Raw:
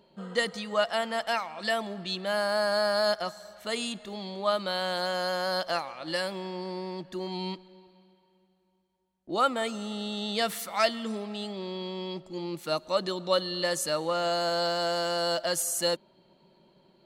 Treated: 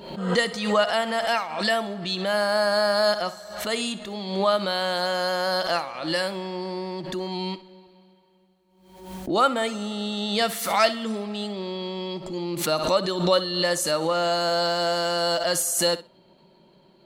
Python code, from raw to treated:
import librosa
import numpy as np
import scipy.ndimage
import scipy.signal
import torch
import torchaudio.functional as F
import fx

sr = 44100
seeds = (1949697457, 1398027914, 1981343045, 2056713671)

y = fx.room_flutter(x, sr, wall_m=10.8, rt60_s=0.24)
y = fx.pre_swell(y, sr, db_per_s=66.0)
y = F.gain(torch.from_numpy(y), 4.5).numpy()